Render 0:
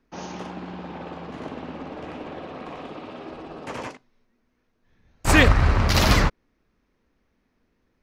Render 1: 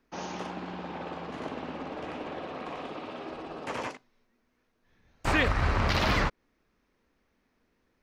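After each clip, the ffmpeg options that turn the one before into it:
ffmpeg -i in.wav -filter_complex "[0:a]alimiter=limit=-12.5dB:level=0:latency=1:release=178,lowshelf=frequency=290:gain=-6,acrossover=split=4400[link_01][link_02];[link_02]acompressor=threshold=-48dB:ratio=4:attack=1:release=60[link_03];[link_01][link_03]amix=inputs=2:normalize=0" out.wav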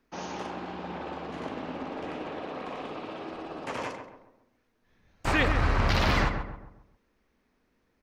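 ffmpeg -i in.wav -filter_complex "[0:a]asplit=2[link_01][link_02];[link_02]adelay=135,lowpass=frequency=1500:poles=1,volume=-6dB,asplit=2[link_03][link_04];[link_04]adelay=135,lowpass=frequency=1500:poles=1,volume=0.43,asplit=2[link_05][link_06];[link_06]adelay=135,lowpass=frequency=1500:poles=1,volume=0.43,asplit=2[link_07][link_08];[link_08]adelay=135,lowpass=frequency=1500:poles=1,volume=0.43,asplit=2[link_09][link_10];[link_10]adelay=135,lowpass=frequency=1500:poles=1,volume=0.43[link_11];[link_01][link_03][link_05][link_07][link_09][link_11]amix=inputs=6:normalize=0" out.wav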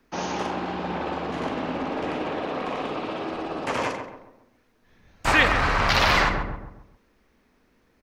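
ffmpeg -i in.wav -filter_complex "[0:a]acrossover=split=570|730[link_01][link_02][link_03];[link_01]asoftclip=type=hard:threshold=-33.5dB[link_04];[link_03]asplit=2[link_05][link_06];[link_06]adelay=48,volume=-13.5dB[link_07];[link_05][link_07]amix=inputs=2:normalize=0[link_08];[link_04][link_02][link_08]amix=inputs=3:normalize=0,volume=8dB" out.wav

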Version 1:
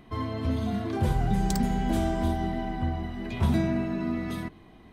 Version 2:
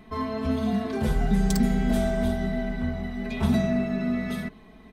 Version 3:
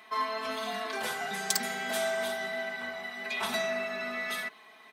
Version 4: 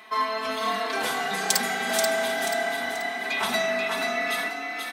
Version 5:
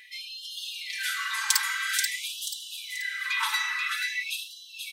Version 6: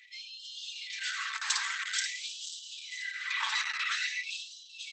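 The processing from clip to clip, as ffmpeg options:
ffmpeg -i in.wav -af "aecho=1:1:4.6:0.85" out.wav
ffmpeg -i in.wav -af "highpass=1000,volume=5.5dB" out.wav
ffmpeg -i in.wav -filter_complex "[0:a]asplit=6[link_01][link_02][link_03][link_04][link_05][link_06];[link_02]adelay=484,afreqshift=34,volume=-4.5dB[link_07];[link_03]adelay=968,afreqshift=68,volume=-12.9dB[link_08];[link_04]adelay=1452,afreqshift=102,volume=-21.3dB[link_09];[link_05]adelay=1936,afreqshift=136,volume=-29.7dB[link_10];[link_06]adelay=2420,afreqshift=170,volume=-38.1dB[link_11];[link_01][link_07][link_08][link_09][link_10][link_11]amix=inputs=6:normalize=0,volume=5.5dB" out.wav
ffmpeg -i in.wav -af "afftfilt=real='re*gte(b*sr/1024,830*pow(2800/830,0.5+0.5*sin(2*PI*0.49*pts/sr)))':imag='im*gte(b*sr/1024,830*pow(2800/830,0.5+0.5*sin(2*PI*0.49*pts/sr)))':win_size=1024:overlap=0.75" out.wav
ffmpeg -i in.wav -af "volume=-5.5dB" -ar 48000 -c:a libopus -b:a 10k out.opus

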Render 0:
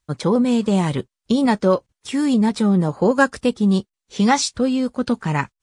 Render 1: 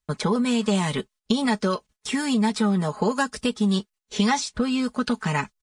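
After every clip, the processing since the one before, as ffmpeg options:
ffmpeg -i in.wav -filter_complex "[0:a]acrossover=split=850|2600[link_01][link_02][link_03];[link_01]acompressor=threshold=-29dB:ratio=4[link_04];[link_02]acompressor=threshold=-33dB:ratio=4[link_05];[link_03]acompressor=threshold=-36dB:ratio=4[link_06];[link_04][link_05][link_06]amix=inputs=3:normalize=0,agate=range=-12dB:threshold=-53dB:ratio=16:detection=peak,aecho=1:1:4.7:0.65,volume=3dB" out.wav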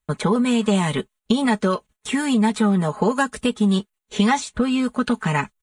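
ffmpeg -i in.wav -af "equalizer=frequency=5100:width=2.8:gain=-12.5,volume=3.5dB" out.wav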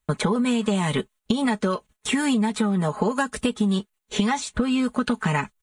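ffmpeg -i in.wav -af "acompressor=threshold=-22dB:ratio=6,volume=3dB" out.wav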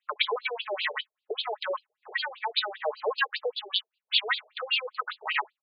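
ffmpeg -i in.wav -af "crystalizer=i=7.5:c=0,aeval=exprs='1*(cos(1*acos(clip(val(0)/1,-1,1)))-cos(1*PI/2))+0.1*(cos(3*acos(clip(val(0)/1,-1,1)))-cos(3*PI/2))':channel_layout=same,afftfilt=real='re*between(b*sr/1024,530*pow(3600/530,0.5+0.5*sin(2*PI*5.1*pts/sr))/1.41,530*pow(3600/530,0.5+0.5*sin(2*PI*5.1*pts/sr))*1.41)':imag='im*between(b*sr/1024,530*pow(3600/530,0.5+0.5*sin(2*PI*5.1*pts/sr))/1.41,530*pow(3600/530,0.5+0.5*sin(2*PI*5.1*pts/sr))*1.41)':win_size=1024:overlap=0.75,volume=1dB" out.wav

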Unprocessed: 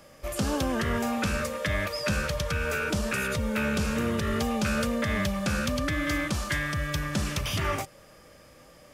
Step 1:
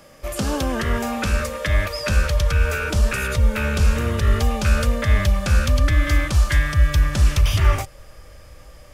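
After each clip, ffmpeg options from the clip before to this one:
ffmpeg -i in.wav -af "asubboost=boost=10.5:cutoff=63,volume=4.5dB" out.wav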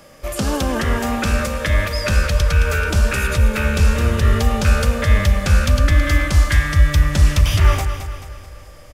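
ffmpeg -i in.wav -af "aecho=1:1:217|434|651|868|1085:0.335|0.161|0.0772|0.037|0.0178,volume=2.5dB" out.wav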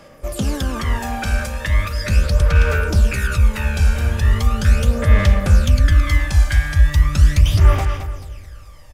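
ffmpeg -i in.wav -af "aphaser=in_gain=1:out_gain=1:delay=1.3:decay=0.55:speed=0.38:type=sinusoidal,volume=-5dB" out.wav

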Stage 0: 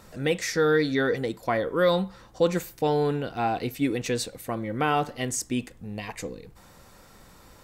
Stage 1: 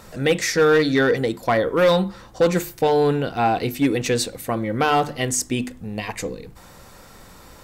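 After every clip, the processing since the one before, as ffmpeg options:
ffmpeg -i in.wav -af "acontrast=82,volume=11dB,asoftclip=hard,volume=-11dB,bandreject=frequency=50:width_type=h:width=6,bandreject=frequency=100:width_type=h:width=6,bandreject=frequency=150:width_type=h:width=6,bandreject=frequency=200:width_type=h:width=6,bandreject=frequency=250:width_type=h:width=6,bandreject=frequency=300:width_type=h:width=6,bandreject=frequency=350:width_type=h:width=6" out.wav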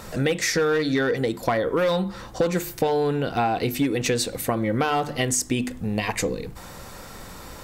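ffmpeg -i in.wav -af "acompressor=threshold=-25dB:ratio=6,volume=5dB" out.wav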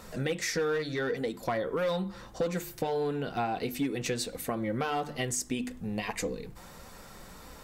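ffmpeg -i in.wav -af "flanger=delay=3.9:depth=1.9:regen=-50:speed=1.6:shape=triangular,volume=-4.5dB" out.wav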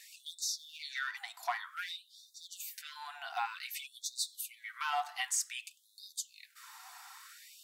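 ffmpeg -i in.wav -af "afftfilt=real='re*gte(b*sr/1024,650*pow(3600/650,0.5+0.5*sin(2*PI*0.54*pts/sr)))':imag='im*gte(b*sr/1024,650*pow(3600/650,0.5+0.5*sin(2*PI*0.54*pts/sr)))':win_size=1024:overlap=0.75" out.wav

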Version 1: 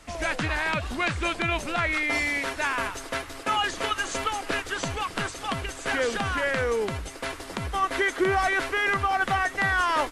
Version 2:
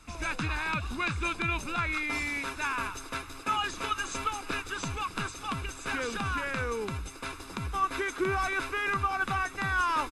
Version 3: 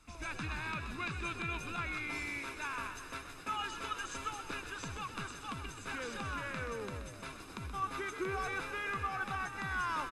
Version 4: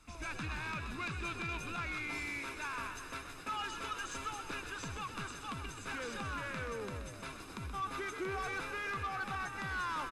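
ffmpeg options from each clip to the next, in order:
ffmpeg -i in.wav -af "aecho=1:1:0.8:0.59,volume=-6dB" out.wav
ffmpeg -i in.wav -filter_complex "[0:a]asplit=8[link_01][link_02][link_03][link_04][link_05][link_06][link_07][link_08];[link_02]adelay=127,afreqshift=48,volume=-9dB[link_09];[link_03]adelay=254,afreqshift=96,volume=-13.4dB[link_10];[link_04]adelay=381,afreqshift=144,volume=-17.9dB[link_11];[link_05]adelay=508,afreqshift=192,volume=-22.3dB[link_12];[link_06]adelay=635,afreqshift=240,volume=-26.7dB[link_13];[link_07]adelay=762,afreqshift=288,volume=-31.2dB[link_14];[link_08]adelay=889,afreqshift=336,volume=-35.6dB[link_15];[link_01][link_09][link_10][link_11][link_12][link_13][link_14][link_15]amix=inputs=8:normalize=0,volume=-8.5dB" out.wav
ffmpeg -i in.wav -af "asoftclip=type=tanh:threshold=-33dB,volume=1dB" out.wav

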